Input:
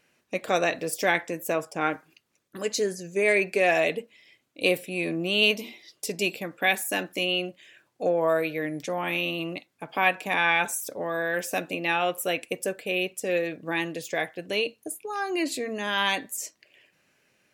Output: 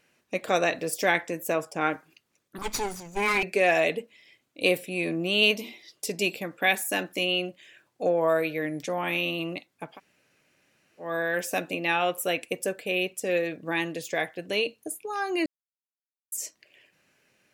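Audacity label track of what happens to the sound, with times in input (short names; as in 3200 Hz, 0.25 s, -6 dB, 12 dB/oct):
2.580000	3.430000	minimum comb delay 0.87 ms
9.920000	11.050000	room tone, crossfade 0.16 s
15.460000	16.320000	mute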